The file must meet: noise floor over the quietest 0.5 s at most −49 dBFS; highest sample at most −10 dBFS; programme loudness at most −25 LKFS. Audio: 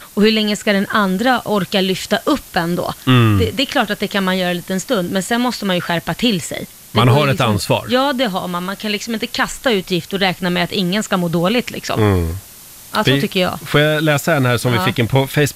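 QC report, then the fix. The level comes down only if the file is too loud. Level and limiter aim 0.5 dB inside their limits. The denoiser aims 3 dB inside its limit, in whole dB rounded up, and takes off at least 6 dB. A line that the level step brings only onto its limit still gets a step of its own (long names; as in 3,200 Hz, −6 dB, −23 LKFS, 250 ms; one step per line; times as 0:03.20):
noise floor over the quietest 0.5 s −38 dBFS: out of spec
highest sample −2.5 dBFS: out of spec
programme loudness −16.5 LKFS: out of spec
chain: broadband denoise 6 dB, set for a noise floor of −38 dBFS
level −9 dB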